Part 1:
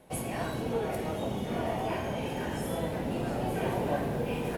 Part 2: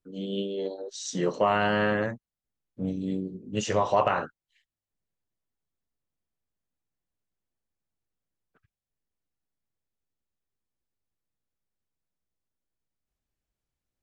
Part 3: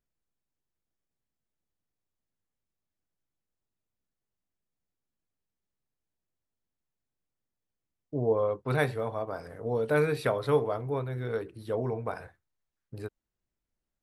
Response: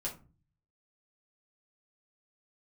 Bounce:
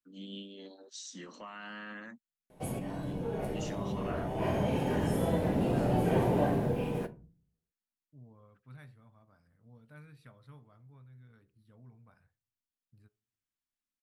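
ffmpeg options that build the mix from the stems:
-filter_complex "[0:a]tiltshelf=f=830:g=3.5,dynaudnorm=f=140:g=9:m=4.5dB,adelay=2500,volume=-6dB,asplit=2[a][b];[b]volume=-6.5dB[c];[1:a]highpass=f=280:w=0.5412,highpass=f=280:w=1.3066,alimiter=limit=-22.5dB:level=0:latency=1:release=44,volume=1.5dB,asplit=2[d][e];[2:a]volume=-20dB,asplit=2[f][g];[g]volume=-23.5dB[h];[e]apad=whole_len=311903[i];[a][i]sidechaincompress=threshold=-59dB:ratio=8:attack=47:release=135[j];[d][f]amix=inputs=2:normalize=0,firequalizer=gain_entry='entry(220,0);entry(410,-22);entry(1200,-7)':delay=0.05:min_phase=1,alimiter=level_in=10.5dB:limit=-24dB:level=0:latency=1:release=406,volume=-10.5dB,volume=0dB[k];[3:a]atrim=start_sample=2205[l];[c][h]amix=inputs=2:normalize=0[m];[m][l]afir=irnorm=-1:irlink=0[n];[j][k][n]amix=inputs=3:normalize=0"

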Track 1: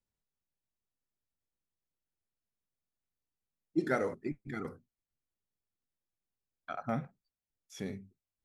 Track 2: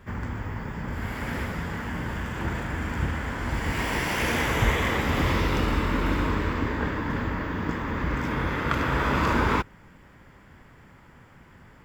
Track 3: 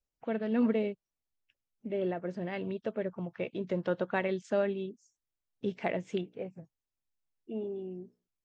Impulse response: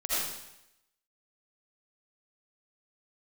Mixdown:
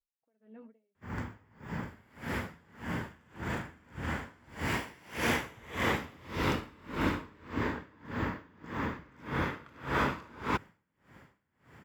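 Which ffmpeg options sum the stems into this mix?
-filter_complex "[1:a]highpass=91,adelay=950,volume=-1.5dB[a];[2:a]lowpass=2.4k,flanger=delay=3.4:depth=7.1:regen=-41:speed=0.82:shape=triangular,volume=-7.5dB,acompressor=threshold=-48dB:ratio=4,volume=0dB[b];[a][b]amix=inputs=2:normalize=0,aeval=exprs='val(0)*pow(10,-29*(0.5-0.5*cos(2*PI*1.7*n/s))/20)':c=same"

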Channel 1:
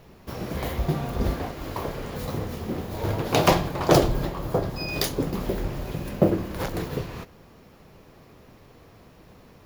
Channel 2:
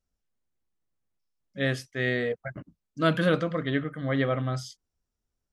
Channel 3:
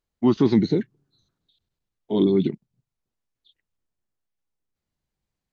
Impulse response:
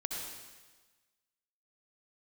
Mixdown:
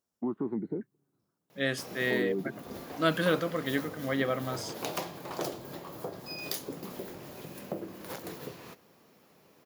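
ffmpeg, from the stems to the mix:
-filter_complex "[0:a]adelay=1500,volume=-9dB[a];[1:a]volume=-2.5dB[b];[2:a]lowpass=f=1.4k:w=0.5412,lowpass=f=1.4k:w=1.3066,volume=-0.5dB[c];[a][c]amix=inputs=2:normalize=0,acompressor=threshold=-35dB:ratio=2.5,volume=0dB[d];[b][d]amix=inputs=2:normalize=0,highpass=190,highshelf=f=5.8k:g=8.5"

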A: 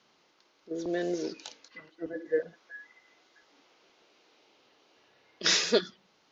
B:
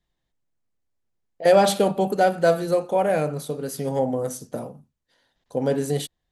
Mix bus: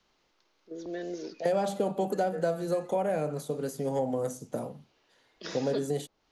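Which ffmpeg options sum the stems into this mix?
-filter_complex "[0:a]volume=-5.5dB[a];[1:a]equalizer=f=6.9k:t=o:w=0.27:g=7,volume=-2.5dB[b];[a][b]amix=inputs=2:normalize=0,acrossover=split=230|1100[c][d][e];[c]acompressor=threshold=-39dB:ratio=4[f];[d]acompressor=threshold=-27dB:ratio=4[g];[e]acompressor=threshold=-45dB:ratio=4[h];[f][g][h]amix=inputs=3:normalize=0"

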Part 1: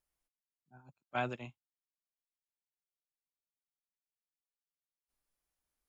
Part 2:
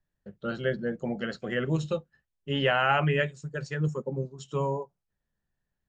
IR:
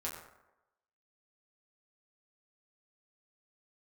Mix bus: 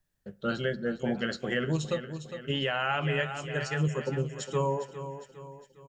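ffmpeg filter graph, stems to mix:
-filter_complex "[0:a]volume=-11.5dB[a];[1:a]highshelf=f=3.4k:g=8.5,volume=1dB,asplit=4[b][c][d][e];[c]volume=-18.5dB[f];[d]volume=-11.5dB[g];[e]apad=whole_len=259311[h];[a][h]sidechaincompress=threshold=-33dB:ratio=8:attack=16:release=390[i];[2:a]atrim=start_sample=2205[j];[f][j]afir=irnorm=-1:irlink=0[k];[g]aecho=0:1:407|814|1221|1628|2035|2442:1|0.45|0.202|0.0911|0.041|0.0185[l];[i][b][k][l]amix=inputs=4:normalize=0,alimiter=limit=-18.5dB:level=0:latency=1:release=442"

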